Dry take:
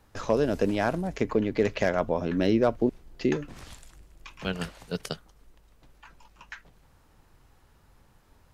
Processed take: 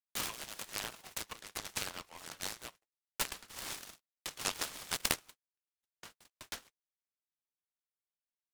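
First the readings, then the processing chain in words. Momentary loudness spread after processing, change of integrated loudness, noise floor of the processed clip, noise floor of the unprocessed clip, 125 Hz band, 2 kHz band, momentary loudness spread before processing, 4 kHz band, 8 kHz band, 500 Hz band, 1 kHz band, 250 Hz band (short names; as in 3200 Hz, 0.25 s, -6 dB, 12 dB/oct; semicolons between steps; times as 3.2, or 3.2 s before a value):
15 LU, -12.0 dB, under -85 dBFS, -61 dBFS, -21.5 dB, -7.0 dB, 20 LU, +1.5 dB, +9.5 dB, -24.5 dB, -11.0 dB, -26.0 dB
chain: high shelf 2400 Hz +6.5 dB; compressor 8:1, threshold -28 dBFS, peak gain reduction 11 dB; Chebyshev high-pass 1100 Hz, order 3; band shelf 4200 Hz +13 dB 1.1 oct; gate -48 dBFS, range -42 dB; noise-modulated delay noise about 1400 Hz, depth 0.13 ms; gain -5 dB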